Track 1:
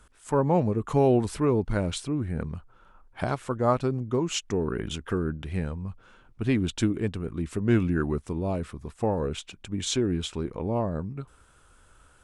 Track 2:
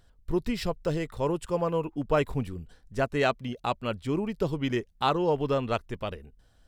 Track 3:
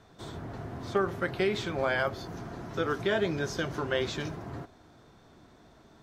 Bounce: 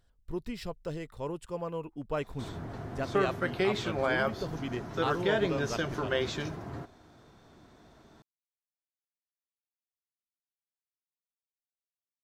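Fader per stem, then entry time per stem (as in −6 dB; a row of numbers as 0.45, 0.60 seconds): muted, −8.5 dB, −0.5 dB; muted, 0.00 s, 2.20 s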